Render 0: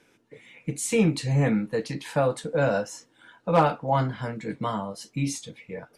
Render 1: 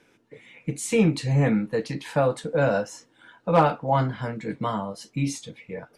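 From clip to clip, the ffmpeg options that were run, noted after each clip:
ffmpeg -i in.wav -af "highshelf=frequency=5600:gain=-5,volume=1.5dB" out.wav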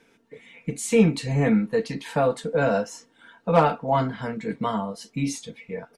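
ffmpeg -i in.wav -af "aecho=1:1:4.4:0.45" out.wav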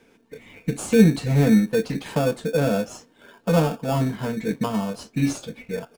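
ffmpeg -i in.wav -filter_complex "[0:a]acrossover=split=470[link_01][link_02];[link_02]acompressor=threshold=-31dB:ratio=6[link_03];[link_01][link_03]amix=inputs=2:normalize=0,asplit=2[link_04][link_05];[link_05]acrusher=samples=22:mix=1:aa=0.000001,volume=-3dB[link_06];[link_04][link_06]amix=inputs=2:normalize=0" out.wav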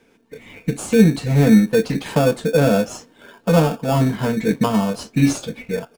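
ffmpeg -i in.wav -af "dynaudnorm=framelen=260:gausssize=3:maxgain=7dB" out.wav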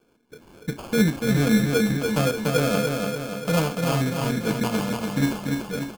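ffmpeg -i in.wav -af "acrusher=samples=23:mix=1:aa=0.000001,aecho=1:1:290|580|870|1160|1450|1740|2030|2320:0.631|0.353|0.198|0.111|0.0621|0.0347|0.0195|0.0109,volume=-7.5dB" out.wav

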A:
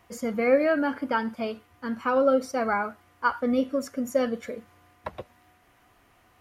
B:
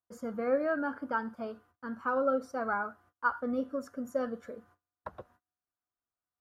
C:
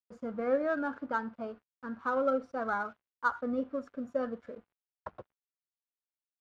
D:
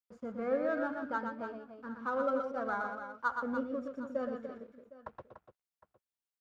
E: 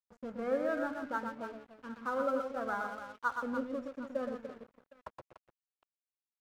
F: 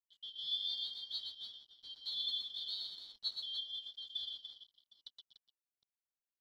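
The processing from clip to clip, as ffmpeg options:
ffmpeg -i in.wav -af "highshelf=frequency=1800:width_type=q:width=3:gain=-6,agate=range=-31dB:threshold=-52dB:ratio=16:detection=peak,volume=-8.5dB" out.wav
ffmpeg -i in.wav -af "aeval=exprs='sgn(val(0))*max(abs(val(0))-0.00106,0)':channel_layout=same,adynamicsmooth=sensitivity=5:basefreq=3700" out.wav
ffmpeg -i in.wav -af "aecho=1:1:120|292|760:0.531|0.335|0.112,volume=-3.5dB" out.wav
ffmpeg -i in.wav -af "aeval=exprs='sgn(val(0))*max(abs(val(0))-0.002,0)':channel_layout=same" out.wav
ffmpeg -i in.wav -af "afftfilt=real='real(if(lt(b,272),68*(eq(floor(b/68),0)*2+eq(floor(b/68),1)*3+eq(floor(b/68),2)*0+eq(floor(b/68),3)*1)+mod(b,68),b),0)':imag='imag(if(lt(b,272),68*(eq(floor(b/68),0)*2+eq(floor(b/68),1)*3+eq(floor(b/68),2)*0+eq(floor(b/68),3)*1)+mod(b,68),b),0)':win_size=2048:overlap=0.75,volume=-6.5dB" out.wav

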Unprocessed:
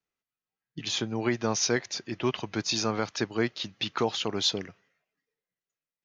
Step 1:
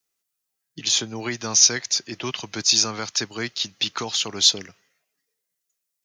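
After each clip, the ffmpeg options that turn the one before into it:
ffmpeg -i in.wav -filter_complex "[0:a]bass=frequency=250:gain=-4,treble=frequency=4000:gain=14,acrossover=split=230|970|2800[link_01][link_02][link_03][link_04];[link_02]alimiter=level_in=5dB:limit=-24dB:level=0:latency=1:release=455,volume=-5dB[link_05];[link_01][link_05][link_03][link_04]amix=inputs=4:normalize=0,volume=2.5dB" out.wav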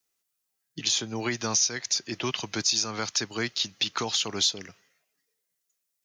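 ffmpeg -i in.wav -af "acompressor=threshold=-23dB:ratio=4" out.wav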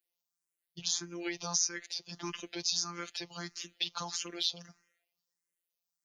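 ffmpeg -i in.wav -filter_complex "[0:a]afftfilt=real='hypot(re,im)*cos(PI*b)':imag='0':win_size=1024:overlap=0.75,asplit=2[link_01][link_02];[link_02]afreqshift=1.6[link_03];[link_01][link_03]amix=inputs=2:normalize=1,volume=-2.5dB" out.wav

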